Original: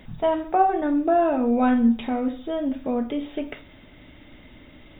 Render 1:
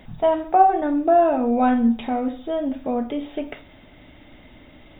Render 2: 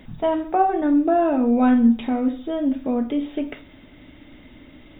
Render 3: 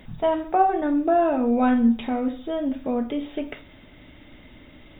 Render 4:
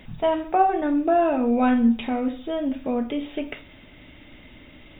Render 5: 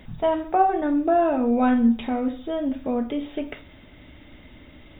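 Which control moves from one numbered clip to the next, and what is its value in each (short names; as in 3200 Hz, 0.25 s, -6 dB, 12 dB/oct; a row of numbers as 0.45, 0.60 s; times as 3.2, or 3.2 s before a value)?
bell, frequency: 740, 280, 13000, 2600, 71 Hz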